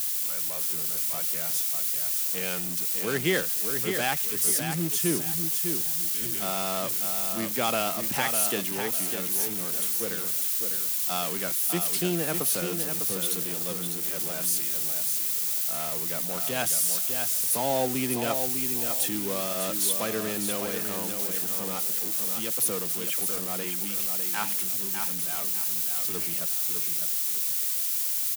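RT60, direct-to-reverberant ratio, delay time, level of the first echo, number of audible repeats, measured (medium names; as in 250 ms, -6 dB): no reverb, no reverb, 602 ms, -6.5 dB, 3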